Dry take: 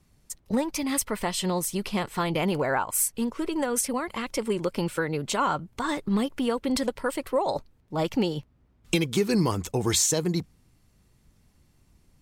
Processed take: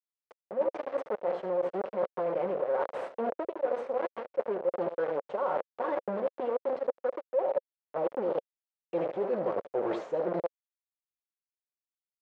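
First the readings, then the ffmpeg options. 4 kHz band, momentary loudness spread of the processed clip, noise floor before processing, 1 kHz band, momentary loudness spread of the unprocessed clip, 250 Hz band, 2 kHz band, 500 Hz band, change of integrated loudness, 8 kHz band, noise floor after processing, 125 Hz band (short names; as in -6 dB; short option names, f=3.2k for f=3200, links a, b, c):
under -20 dB, 4 LU, -64 dBFS, -5.0 dB, 7 LU, -13.0 dB, -12.0 dB, +0.5 dB, -5.5 dB, under -40 dB, under -85 dBFS, -19.0 dB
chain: -filter_complex "[0:a]aecho=1:1:5.4:0.48,aecho=1:1:77:0.355,adynamicequalizer=threshold=0.0141:dfrequency=720:dqfactor=0.93:tfrequency=720:tqfactor=0.93:attack=5:release=100:ratio=0.375:range=3:mode=cutabove:tftype=bell,asplit=2[a][b];[b]asoftclip=type=tanh:threshold=-18.5dB,volume=-10dB[c];[a][c]amix=inputs=2:normalize=0,acrusher=bits=3:mix=0:aa=0.000001,lowpass=1.2k,aemphasis=mode=reproduction:type=bsi,acontrast=85,highpass=f=530:t=q:w=4.9,areverse,acompressor=threshold=-23dB:ratio=4,areverse,volume=-6.5dB"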